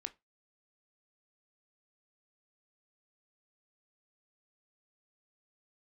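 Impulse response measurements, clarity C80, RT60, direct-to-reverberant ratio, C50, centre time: 30.0 dB, 0.20 s, 9.5 dB, 21.0 dB, 4 ms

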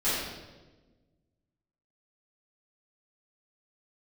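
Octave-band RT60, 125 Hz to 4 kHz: 1.9 s, 1.8 s, 1.4 s, 1.0 s, 0.95 s, 0.95 s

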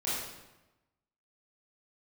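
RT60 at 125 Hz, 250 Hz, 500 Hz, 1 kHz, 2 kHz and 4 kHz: 1.2 s, 1.1 s, 1.0 s, 1.0 s, 0.90 s, 0.80 s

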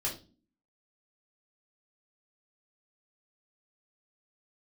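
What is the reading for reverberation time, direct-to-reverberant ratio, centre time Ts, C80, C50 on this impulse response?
no single decay rate, -4.0 dB, 21 ms, 16.5 dB, 9.5 dB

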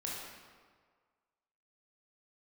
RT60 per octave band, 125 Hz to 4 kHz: 1.6 s, 1.5 s, 1.7 s, 1.7 s, 1.4 s, 1.1 s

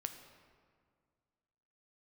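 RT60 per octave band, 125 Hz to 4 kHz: 2.3 s, 2.3 s, 2.0 s, 1.9 s, 1.5 s, 1.2 s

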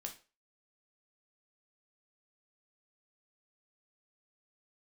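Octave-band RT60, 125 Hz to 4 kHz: 0.30 s, 0.30 s, 0.35 s, 0.30 s, 0.30 s, 0.30 s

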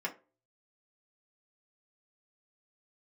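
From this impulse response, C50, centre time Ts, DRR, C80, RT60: 15.5 dB, 10 ms, -2.5 dB, 22.0 dB, 0.35 s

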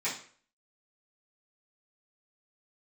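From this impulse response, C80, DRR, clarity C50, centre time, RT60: 12.0 dB, -12.0 dB, 7.0 dB, 28 ms, 0.50 s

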